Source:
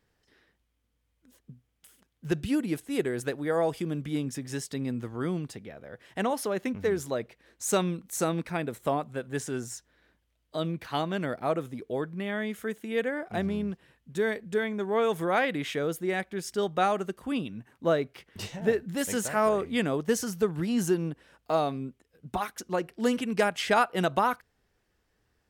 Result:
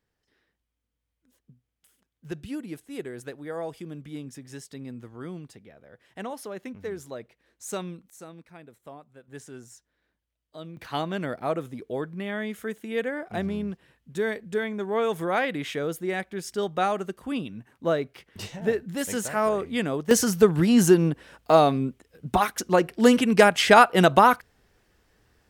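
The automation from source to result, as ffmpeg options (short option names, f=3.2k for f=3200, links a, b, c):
-af "asetnsamples=n=441:p=0,asendcmd='8.1 volume volume -16.5dB;9.28 volume volume -10dB;10.77 volume volume 0.5dB;20.11 volume volume 9dB',volume=-7dB"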